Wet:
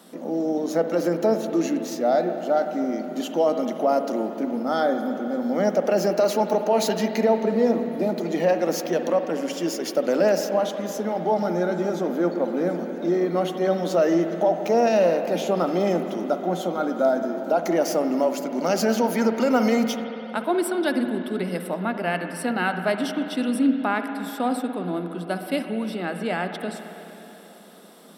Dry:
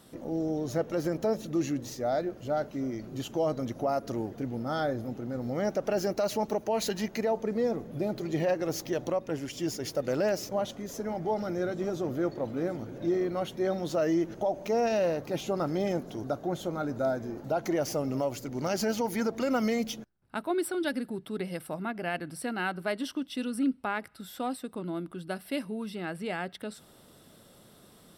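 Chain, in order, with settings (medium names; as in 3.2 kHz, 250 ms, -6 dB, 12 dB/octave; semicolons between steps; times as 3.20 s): rippled Chebyshev high-pass 170 Hz, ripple 3 dB; spring tank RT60 3.5 s, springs 54/58 ms, chirp 40 ms, DRR 6.5 dB; trim +8.5 dB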